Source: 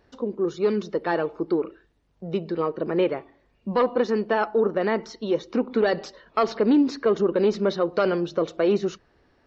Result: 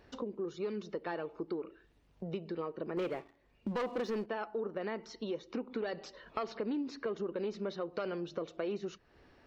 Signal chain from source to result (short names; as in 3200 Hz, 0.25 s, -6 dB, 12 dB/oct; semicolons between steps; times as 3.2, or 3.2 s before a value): bell 2600 Hz +3.5 dB 0.54 oct; 2.97–4.26 sample leveller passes 2; compressor 3:1, threshold -40 dBFS, peak gain reduction 17.5 dB